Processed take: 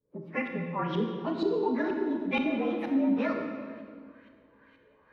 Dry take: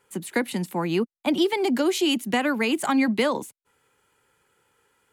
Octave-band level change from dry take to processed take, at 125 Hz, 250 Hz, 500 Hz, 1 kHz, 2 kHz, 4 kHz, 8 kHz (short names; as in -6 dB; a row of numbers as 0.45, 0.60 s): -3.5 dB, -4.5 dB, -5.5 dB, -6.5 dB, -8.0 dB, -16.0 dB, under -30 dB